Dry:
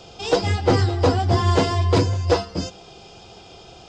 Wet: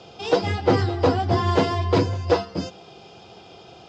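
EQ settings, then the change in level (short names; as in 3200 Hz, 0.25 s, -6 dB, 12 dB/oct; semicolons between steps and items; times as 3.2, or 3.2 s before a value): HPF 110 Hz 12 dB/oct; air absorption 110 m; 0.0 dB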